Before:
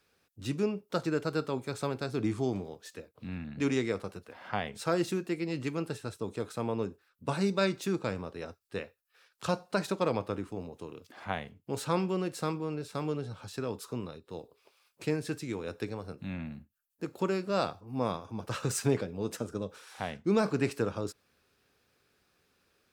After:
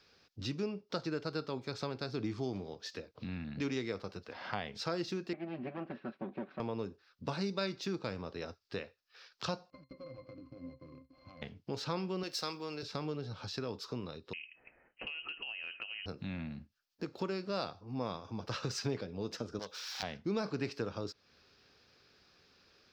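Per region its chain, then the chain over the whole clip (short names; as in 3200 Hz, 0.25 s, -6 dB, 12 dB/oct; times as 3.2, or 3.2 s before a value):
5.33–6.6 minimum comb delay 5.3 ms + speaker cabinet 230–2200 Hz, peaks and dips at 240 Hz +8 dB, 440 Hz -8 dB, 900 Hz -6 dB, 1300 Hz -5 dB, 2000 Hz -4 dB
9.7–11.42 switching dead time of 0.27 ms + compressor 16:1, threshold -37 dBFS + octave resonator C, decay 0.13 s
12.23–12.83 RIAA curve recording + notch 6900 Hz, Q 17
14.33–16.06 inverted band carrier 3000 Hz + compressor, threshold -41 dBFS
19.59–20.03 self-modulated delay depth 0.62 ms + de-esser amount 90% + tilt +4 dB/oct
whole clip: resonant high shelf 6900 Hz -12 dB, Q 3; compressor 2:1, threshold -46 dBFS; gain +4 dB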